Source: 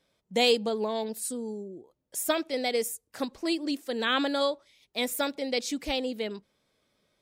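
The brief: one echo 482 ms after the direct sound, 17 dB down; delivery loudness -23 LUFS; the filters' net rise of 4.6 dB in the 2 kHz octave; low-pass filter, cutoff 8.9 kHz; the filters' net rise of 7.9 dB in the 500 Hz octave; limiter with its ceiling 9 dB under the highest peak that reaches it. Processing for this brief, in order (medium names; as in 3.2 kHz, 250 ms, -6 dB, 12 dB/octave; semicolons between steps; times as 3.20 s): low-pass 8.9 kHz; peaking EQ 500 Hz +8.5 dB; peaking EQ 2 kHz +5.5 dB; peak limiter -15 dBFS; delay 482 ms -17 dB; trim +4 dB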